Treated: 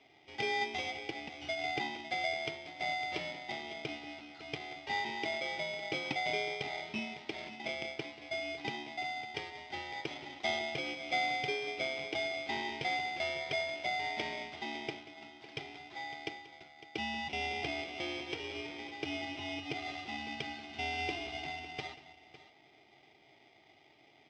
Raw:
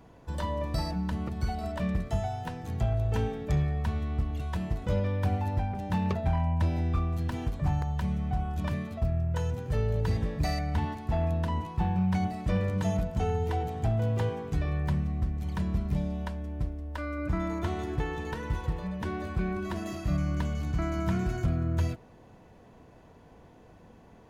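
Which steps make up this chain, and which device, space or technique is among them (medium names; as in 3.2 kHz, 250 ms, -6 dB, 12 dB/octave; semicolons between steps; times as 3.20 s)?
elliptic high-pass 570 Hz, stop band 40 dB; dynamic bell 840 Hz, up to +5 dB, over -47 dBFS, Q 0.95; multi-tap echo 185/555 ms -18/-15 dB; ring modulator pedal into a guitar cabinet (polarity switched at an audio rate 1.4 kHz; cabinet simulation 110–4500 Hz, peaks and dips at 140 Hz +9 dB, 330 Hz +6 dB, 510 Hz -9 dB, 2.3 kHz -4 dB)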